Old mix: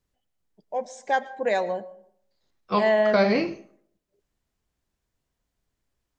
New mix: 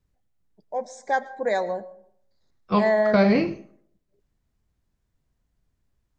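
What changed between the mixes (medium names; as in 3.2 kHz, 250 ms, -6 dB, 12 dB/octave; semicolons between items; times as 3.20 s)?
first voice: add Butterworth band-stop 2.8 kHz, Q 2.1; second voice: add tone controls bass +9 dB, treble -4 dB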